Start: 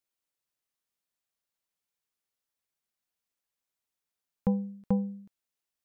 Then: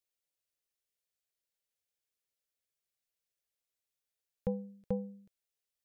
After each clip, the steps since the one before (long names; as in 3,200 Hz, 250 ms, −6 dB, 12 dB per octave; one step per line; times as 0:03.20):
octave-band graphic EQ 250/500/1,000 Hz −12/+6/−11 dB
level −2 dB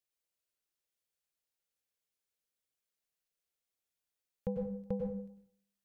dense smooth reverb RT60 0.62 s, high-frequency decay 0.6×, pre-delay 85 ms, DRR 2 dB
level −2.5 dB